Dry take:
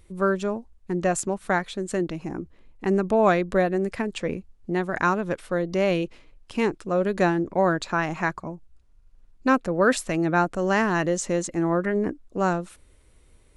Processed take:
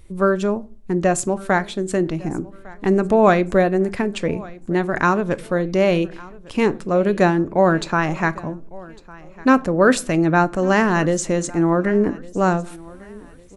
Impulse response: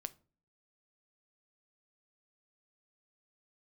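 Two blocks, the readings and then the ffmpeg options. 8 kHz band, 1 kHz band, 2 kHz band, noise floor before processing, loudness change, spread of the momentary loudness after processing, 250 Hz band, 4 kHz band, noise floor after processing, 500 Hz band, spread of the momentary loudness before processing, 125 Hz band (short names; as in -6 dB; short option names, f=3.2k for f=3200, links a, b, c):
+4.5 dB, +5.0 dB, +4.5 dB, -56 dBFS, +5.5 dB, 12 LU, +6.0 dB, +4.5 dB, -42 dBFS, +5.5 dB, 10 LU, +6.5 dB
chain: -filter_complex "[0:a]aecho=1:1:1154|2308|3462:0.0794|0.0286|0.0103,asplit=2[a][b];[1:a]atrim=start_sample=2205,lowshelf=f=370:g=4[c];[b][c]afir=irnorm=-1:irlink=0,volume=12.5dB[d];[a][d]amix=inputs=2:normalize=0,volume=-7.5dB"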